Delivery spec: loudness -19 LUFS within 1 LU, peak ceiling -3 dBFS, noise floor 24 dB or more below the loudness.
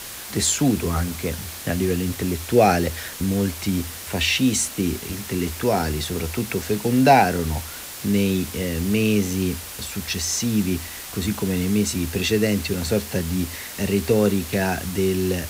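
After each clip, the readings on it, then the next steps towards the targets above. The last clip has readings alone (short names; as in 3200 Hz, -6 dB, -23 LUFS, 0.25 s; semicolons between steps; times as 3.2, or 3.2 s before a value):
noise floor -36 dBFS; noise floor target -47 dBFS; loudness -22.5 LUFS; peak -2.5 dBFS; loudness target -19.0 LUFS
-> noise print and reduce 11 dB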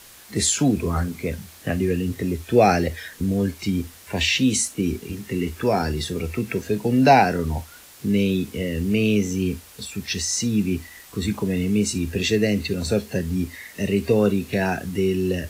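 noise floor -46 dBFS; noise floor target -47 dBFS
-> noise print and reduce 6 dB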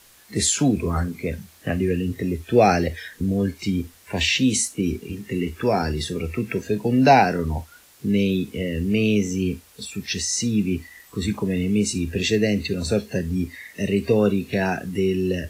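noise floor -52 dBFS; loudness -22.5 LUFS; peak -2.5 dBFS; loudness target -19.0 LUFS
-> gain +3.5 dB; limiter -3 dBFS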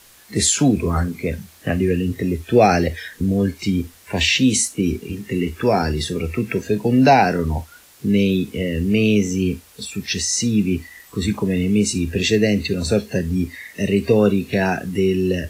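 loudness -19.5 LUFS; peak -3.0 dBFS; noise floor -48 dBFS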